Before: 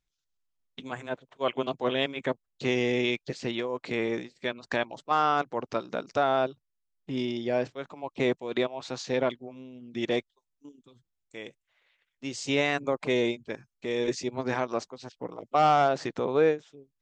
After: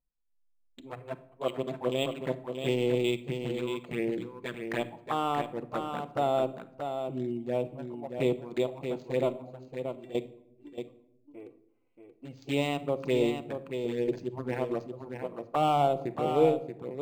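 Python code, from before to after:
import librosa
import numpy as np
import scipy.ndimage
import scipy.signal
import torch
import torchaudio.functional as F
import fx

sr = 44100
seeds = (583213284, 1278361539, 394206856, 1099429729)

p1 = fx.wiener(x, sr, points=25)
p2 = fx.env_flanger(p1, sr, rest_ms=4.1, full_db=-24.0)
p3 = fx.comb_fb(p2, sr, f0_hz=390.0, decay_s=0.27, harmonics='all', damping=0.0, mix_pct=90, at=(9.68, 10.15))
p4 = p3 + fx.echo_single(p3, sr, ms=630, db=-7.0, dry=0)
p5 = fx.room_shoebox(p4, sr, seeds[0], volume_m3=1900.0, walls='furnished', distance_m=0.77)
y = np.interp(np.arange(len(p5)), np.arange(len(p5))[::4], p5[::4])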